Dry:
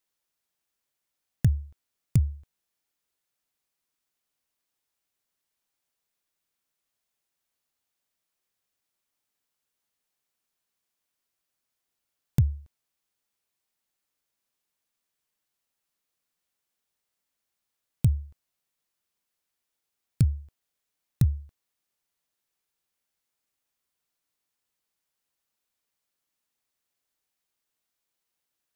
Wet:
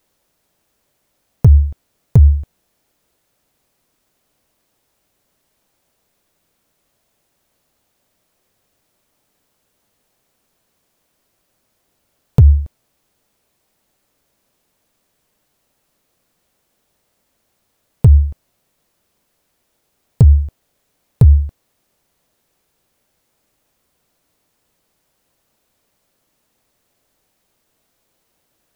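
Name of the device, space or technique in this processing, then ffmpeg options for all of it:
mastering chain: -af "equalizer=f=600:t=o:w=0.53:g=3.5,acompressor=threshold=-23dB:ratio=2,asoftclip=type=tanh:threshold=-13.5dB,tiltshelf=f=790:g=5.5,asoftclip=type=hard:threshold=-14dB,alimiter=level_in=21dB:limit=-1dB:release=50:level=0:latency=1,volume=-1dB"

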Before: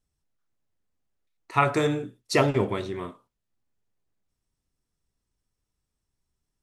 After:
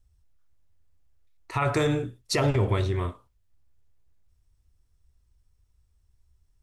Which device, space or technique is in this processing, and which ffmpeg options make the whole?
car stereo with a boomy subwoofer: -af "lowshelf=f=120:t=q:w=1.5:g=13.5,alimiter=limit=-18dB:level=0:latency=1:release=65,volume=3dB"

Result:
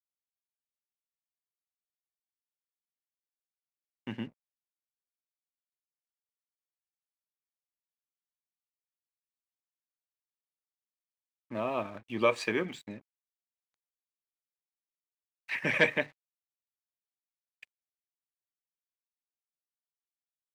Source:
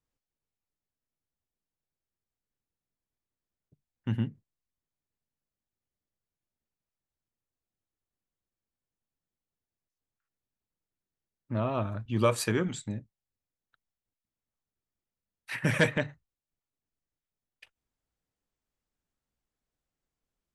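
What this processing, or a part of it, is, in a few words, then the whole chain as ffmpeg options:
pocket radio on a weak battery: -af "highpass=280,lowpass=4.4k,bandreject=f=1.4k:w=7.1,aeval=exprs='sgn(val(0))*max(abs(val(0))-0.00133,0)':c=same,equalizer=f=2.3k:t=o:w=0.46:g=6.5"

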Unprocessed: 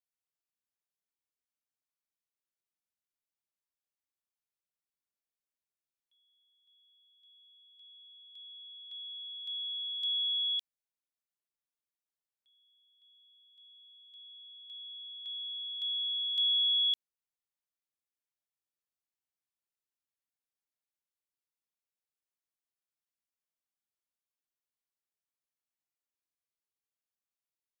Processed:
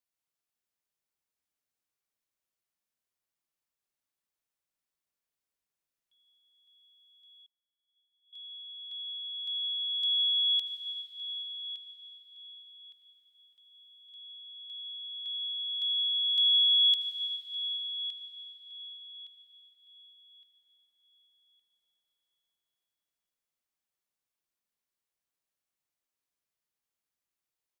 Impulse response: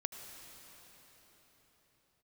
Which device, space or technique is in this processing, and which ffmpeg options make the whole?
cathedral: -filter_complex "[1:a]atrim=start_sample=2205[a];[0:a][a]afir=irnorm=-1:irlink=0,asplit=2[b][c];[c]adelay=1164,lowpass=f=3.5k:p=1,volume=-10.5dB,asplit=2[d][e];[e]adelay=1164,lowpass=f=3.5k:p=1,volume=0.38,asplit=2[f][g];[g]adelay=1164,lowpass=f=3.5k:p=1,volume=0.38,asplit=2[h][i];[i]adelay=1164,lowpass=f=3.5k:p=1,volume=0.38[j];[b][d][f][h][j]amix=inputs=5:normalize=0,asettb=1/sr,asplit=3[k][l][m];[k]atrim=end=7.464[n];[l]atrim=start=7.46:end=8.33,asetpts=PTS-STARTPTS,afade=t=in:d=0.004:c=qsin,afade=t=out:st=0.866:d=0.004:c=qsin,agate=range=-36dB:threshold=-52dB:ratio=16:detection=peak[o];[m]atrim=start=8.326[p];[n][o]acrossfade=d=0.004:c1=hsin:c2=qsin[q];[q][p]acrossfade=d=0.004:c1=qsin:c2=hsin,volume=4dB"

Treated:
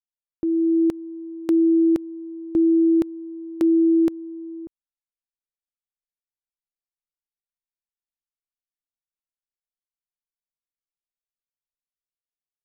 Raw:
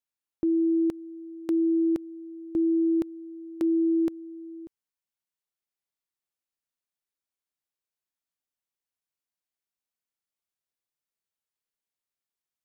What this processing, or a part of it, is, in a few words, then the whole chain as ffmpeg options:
voice memo with heavy noise removal: -af "anlmdn=0.0398,dynaudnorm=f=120:g=11:m=6.5dB"

